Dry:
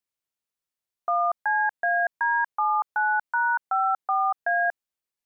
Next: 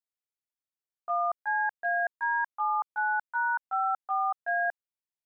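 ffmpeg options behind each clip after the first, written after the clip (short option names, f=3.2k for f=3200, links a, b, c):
-af "agate=range=-7dB:threshold=-25dB:ratio=16:detection=peak,volume=-4.5dB"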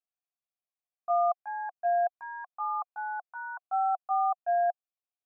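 -filter_complex "[0:a]asplit=3[a][b][c];[a]bandpass=f=730:t=q:w=8,volume=0dB[d];[b]bandpass=f=1.09k:t=q:w=8,volume=-6dB[e];[c]bandpass=f=2.44k:t=q:w=8,volume=-9dB[f];[d][e][f]amix=inputs=3:normalize=0,volume=6.5dB"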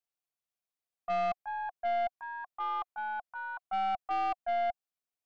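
-af "aeval=exprs='(tanh(22.4*val(0)+0.2)-tanh(0.2))/22.4':c=same"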